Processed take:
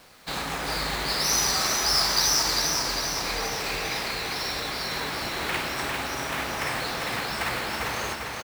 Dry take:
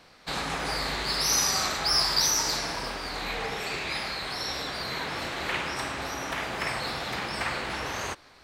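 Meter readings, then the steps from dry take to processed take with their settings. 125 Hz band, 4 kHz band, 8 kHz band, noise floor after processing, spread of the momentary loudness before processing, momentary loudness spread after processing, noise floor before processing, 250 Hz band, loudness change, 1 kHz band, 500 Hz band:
+2.0 dB, +2.5 dB, +2.5 dB, -34 dBFS, 10 LU, 9 LU, -55 dBFS, +2.0 dB, +2.5 dB, +2.0 dB, +2.0 dB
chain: companded quantiser 4-bit; on a send: feedback echo 0.399 s, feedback 58%, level -4 dB

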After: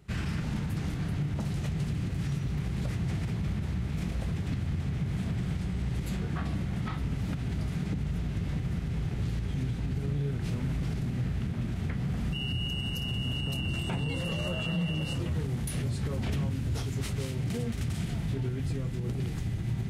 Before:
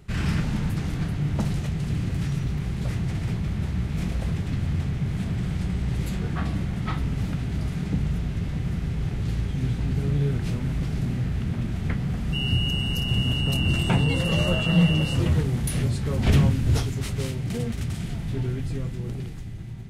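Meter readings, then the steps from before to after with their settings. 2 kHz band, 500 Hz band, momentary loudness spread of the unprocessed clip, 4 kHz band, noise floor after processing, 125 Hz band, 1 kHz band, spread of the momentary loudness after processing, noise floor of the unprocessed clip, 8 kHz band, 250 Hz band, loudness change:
-7.0 dB, -6.5 dB, 7 LU, -7.5 dB, -34 dBFS, -6.0 dB, -7.0 dB, 2 LU, -32 dBFS, -6.0 dB, -6.5 dB, -6.5 dB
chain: recorder AGC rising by 31 dB/s; HPF 42 Hz; limiter -16 dBFS, peak gain reduction 7.5 dB; gain -7 dB

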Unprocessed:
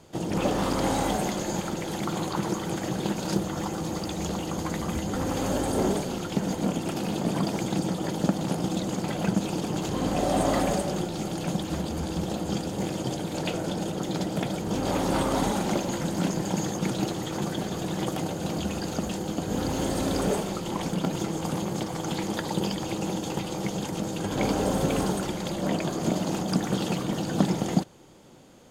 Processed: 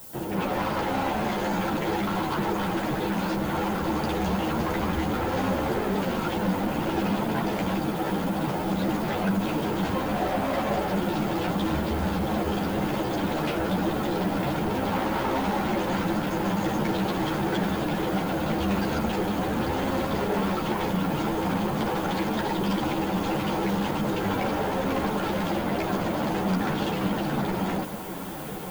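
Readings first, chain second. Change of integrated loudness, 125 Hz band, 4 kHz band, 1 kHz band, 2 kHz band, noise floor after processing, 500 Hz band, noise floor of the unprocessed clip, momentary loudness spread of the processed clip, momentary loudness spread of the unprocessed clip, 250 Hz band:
+1.5 dB, 0.0 dB, 0.0 dB, +4.5 dB, +5.5 dB, -30 dBFS, +1.5 dB, -34 dBFS, 1 LU, 5 LU, +1.5 dB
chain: LPF 3300 Hz 12 dB/oct; bell 1200 Hz +6.5 dB 1.5 oct; notch 1200 Hz, Q 9.6; AGC gain up to 11.5 dB; limiter -12 dBFS, peak gain reduction 10.5 dB; added noise violet -42 dBFS; soft clip -22.5 dBFS, distortion -10 dB; diffused feedback echo 1.646 s, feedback 76%, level -12.5 dB; ensemble effect; gain +2 dB

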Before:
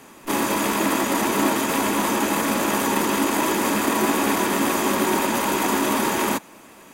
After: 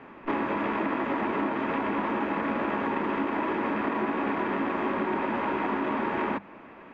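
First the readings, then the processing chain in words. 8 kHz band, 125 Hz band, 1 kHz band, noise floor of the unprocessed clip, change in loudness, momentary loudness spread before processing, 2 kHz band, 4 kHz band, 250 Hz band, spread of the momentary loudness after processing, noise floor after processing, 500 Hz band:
under -40 dB, -7.5 dB, -6.0 dB, -46 dBFS, -7.5 dB, 1 LU, -7.0 dB, -18.0 dB, -6.5 dB, 1 LU, -48 dBFS, -6.0 dB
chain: LPF 2400 Hz 24 dB/oct; notches 50/100/150/200 Hz; compressor, threshold -25 dBFS, peak gain reduction 9 dB

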